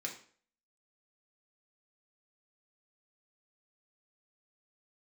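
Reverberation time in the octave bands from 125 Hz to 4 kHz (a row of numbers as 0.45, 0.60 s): 0.45, 0.45, 0.50, 0.45, 0.45, 0.40 s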